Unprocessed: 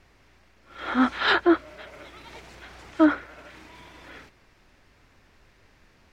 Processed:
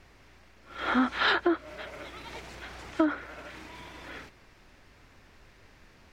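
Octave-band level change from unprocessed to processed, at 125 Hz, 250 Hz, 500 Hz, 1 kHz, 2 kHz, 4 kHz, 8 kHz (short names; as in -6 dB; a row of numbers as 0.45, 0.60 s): 0.0 dB, -6.0 dB, -5.5 dB, -3.5 dB, -3.0 dB, -2.5 dB, n/a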